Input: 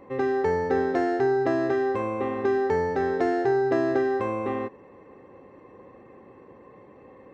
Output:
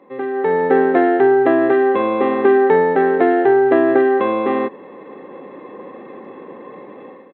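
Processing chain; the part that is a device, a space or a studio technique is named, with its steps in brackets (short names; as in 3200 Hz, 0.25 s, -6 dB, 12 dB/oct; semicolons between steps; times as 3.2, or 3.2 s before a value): Bluetooth headset (HPF 180 Hz 24 dB/oct; AGC gain up to 14 dB; downsampling 8000 Hz; SBC 64 kbps 48000 Hz)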